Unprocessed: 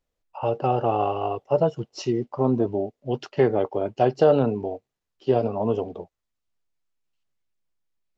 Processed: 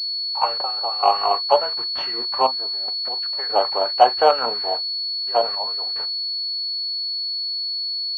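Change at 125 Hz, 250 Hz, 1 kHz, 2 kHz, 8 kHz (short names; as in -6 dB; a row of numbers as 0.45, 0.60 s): under -25 dB, -16.5 dB, +8.0 dB, +6.5 dB, n/a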